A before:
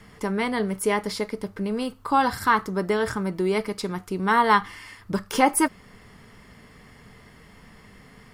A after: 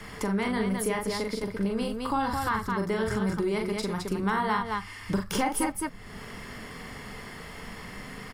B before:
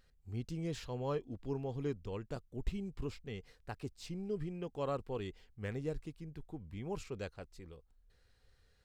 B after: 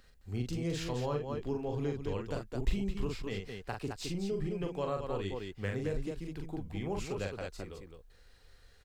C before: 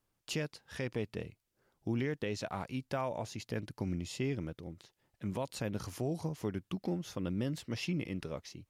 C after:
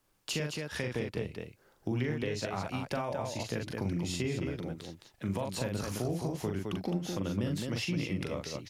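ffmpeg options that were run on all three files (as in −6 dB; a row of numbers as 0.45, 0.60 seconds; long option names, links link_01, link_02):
-filter_complex "[0:a]equalizer=frequency=100:width=0.48:gain=-5,aecho=1:1:40.82|212.8:0.631|0.501,acrossover=split=150[link_01][link_02];[link_02]acompressor=threshold=-43dB:ratio=2.5[link_03];[link_01][link_03]amix=inputs=2:normalize=0,volume=8dB"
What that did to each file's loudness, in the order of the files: −5.0, +4.5, +3.5 LU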